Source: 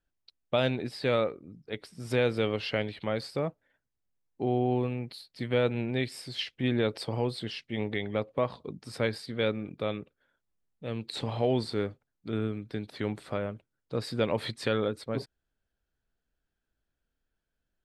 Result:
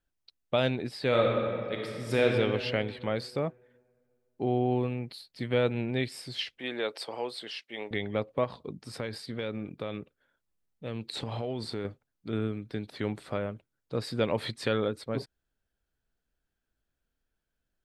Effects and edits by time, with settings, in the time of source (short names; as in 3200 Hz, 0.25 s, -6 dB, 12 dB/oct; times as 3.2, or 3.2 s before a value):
1.07–2.24 reverb throw, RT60 2.3 s, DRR -1 dB
6.58–7.91 HPF 490 Hz
8.44–11.85 compressor, threshold -29 dBFS